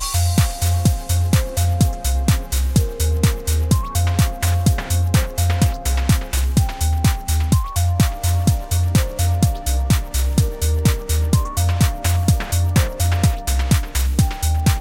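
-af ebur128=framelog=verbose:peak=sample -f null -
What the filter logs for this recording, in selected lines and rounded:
Integrated loudness:
  I:         -18.9 LUFS
  Threshold: -28.9 LUFS
Loudness range:
  LRA:         0.5 LU
  Threshold: -38.9 LUFS
  LRA low:   -19.1 LUFS
  LRA high:  -18.7 LUFS
Sample peak:
  Peak:       -3.6 dBFS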